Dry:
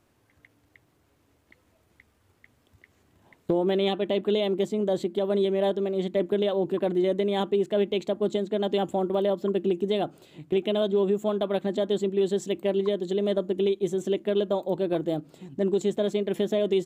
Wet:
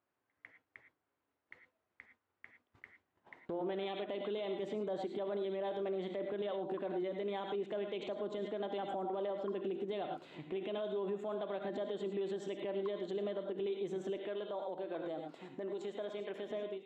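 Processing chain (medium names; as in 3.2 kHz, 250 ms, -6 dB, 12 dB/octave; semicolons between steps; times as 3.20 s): fade out at the end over 1.01 s; gate -58 dBFS, range -19 dB; low-pass 1.4 kHz 12 dB/octave; tilt EQ +4.5 dB/octave; reverberation, pre-delay 3 ms, DRR 7.5 dB; compression 3:1, threshold -39 dBFS, peak gain reduction 11.5 dB; peak limiter -35 dBFS, peak gain reduction 9 dB; 14.17–16.51 s: high-pass 340 Hz 6 dB/octave; trim +4.5 dB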